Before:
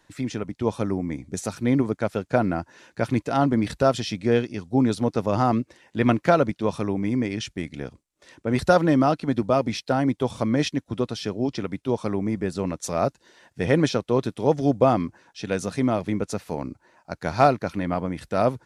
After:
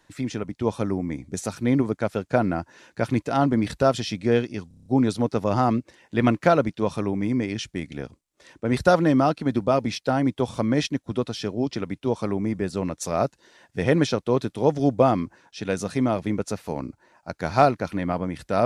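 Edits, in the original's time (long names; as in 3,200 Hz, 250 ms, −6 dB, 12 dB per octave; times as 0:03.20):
0:04.68: stutter 0.03 s, 7 plays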